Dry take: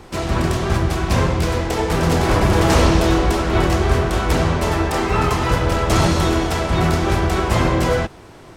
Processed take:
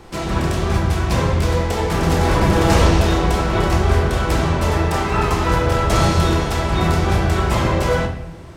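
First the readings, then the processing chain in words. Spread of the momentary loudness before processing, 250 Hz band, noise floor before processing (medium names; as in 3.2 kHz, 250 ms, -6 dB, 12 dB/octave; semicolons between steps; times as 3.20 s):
5 LU, -1.0 dB, -41 dBFS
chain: simulated room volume 280 m³, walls mixed, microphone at 0.73 m; trim -2 dB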